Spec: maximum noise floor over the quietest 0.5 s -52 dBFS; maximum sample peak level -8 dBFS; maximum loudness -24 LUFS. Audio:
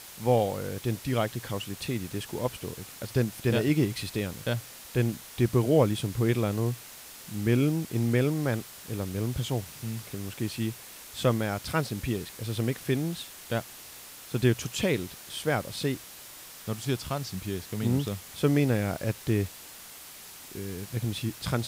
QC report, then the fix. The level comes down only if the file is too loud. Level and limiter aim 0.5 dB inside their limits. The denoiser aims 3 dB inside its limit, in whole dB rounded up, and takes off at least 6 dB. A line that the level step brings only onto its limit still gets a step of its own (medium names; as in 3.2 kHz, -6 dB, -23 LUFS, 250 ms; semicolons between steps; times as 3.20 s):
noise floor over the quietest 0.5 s -46 dBFS: fail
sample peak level -10.5 dBFS: pass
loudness -29.5 LUFS: pass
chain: noise reduction 9 dB, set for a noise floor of -46 dBFS